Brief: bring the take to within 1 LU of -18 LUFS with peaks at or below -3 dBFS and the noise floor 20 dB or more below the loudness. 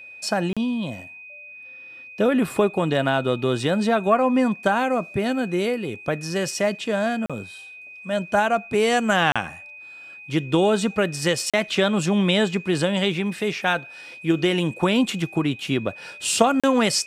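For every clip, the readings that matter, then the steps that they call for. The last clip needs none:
dropouts 5; longest dropout 36 ms; steady tone 2500 Hz; tone level -39 dBFS; loudness -22.5 LUFS; peak -2.5 dBFS; loudness target -18.0 LUFS
-> interpolate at 0.53/7.26/9.32/11.5/16.6, 36 ms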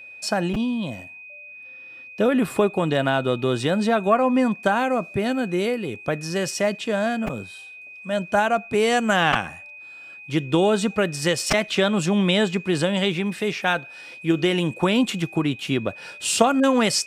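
dropouts 0; steady tone 2500 Hz; tone level -39 dBFS
-> notch 2500 Hz, Q 30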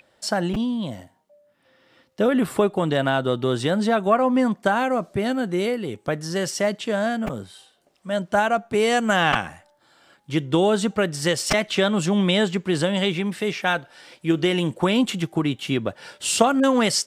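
steady tone none; loudness -22.5 LUFS; peak -2.5 dBFS; loudness target -18.0 LUFS
-> gain +4.5 dB; limiter -3 dBFS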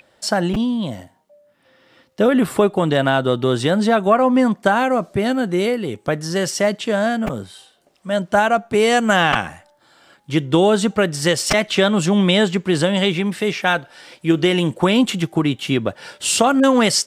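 loudness -18.0 LUFS; peak -3.0 dBFS; noise floor -59 dBFS

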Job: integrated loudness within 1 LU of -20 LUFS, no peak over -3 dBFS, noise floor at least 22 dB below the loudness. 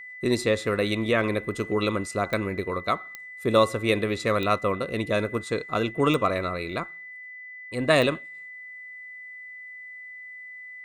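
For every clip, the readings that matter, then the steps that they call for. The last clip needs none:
clicks 5; steady tone 2000 Hz; tone level -39 dBFS; loudness -25.5 LUFS; peak -6.0 dBFS; loudness target -20.0 LUFS
-> de-click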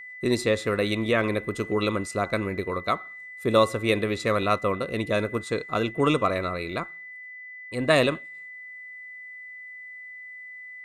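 clicks 0; steady tone 2000 Hz; tone level -39 dBFS
-> notch 2000 Hz, Q 30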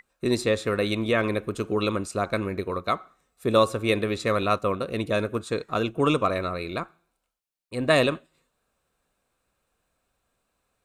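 steady tone none; loudness -25.5 LUFS; peak -6.0 dBFS; loudness target -20.0 LUFS
-> gain +5.5 dB; limiter -3 dBFS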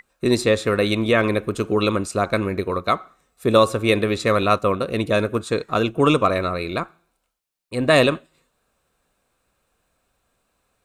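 loudness -20.5 LUFS; peak -3.0 dBFS; noise floor -72 dBFS

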